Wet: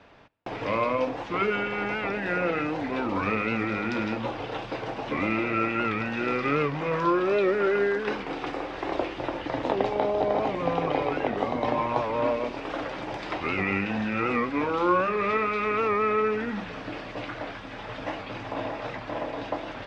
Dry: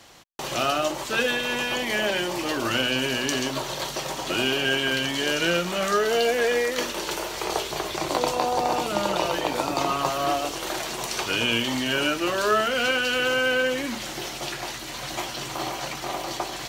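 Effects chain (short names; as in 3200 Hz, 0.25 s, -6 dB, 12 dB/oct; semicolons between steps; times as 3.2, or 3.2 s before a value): LPF 2400 Hz 12 dB/oct; varispeed -16%; on a send at -23 dB: reverb RT60 1.4 s, pre-delay 7 ms; on the sum: record warp 78 rpm, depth 100 cents; gain -1 dB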